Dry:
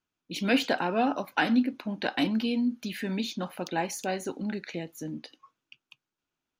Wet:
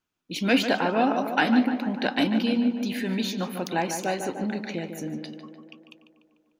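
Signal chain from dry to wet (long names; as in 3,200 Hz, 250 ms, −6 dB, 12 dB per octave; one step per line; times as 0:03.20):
0:03.05–0:03.82: high-shelf EQ 11,000 Hz +9.5 dB
tape delay 148 ms, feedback 73%, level −6.5 dB, low-pass 2,100 Hz
level +3 dB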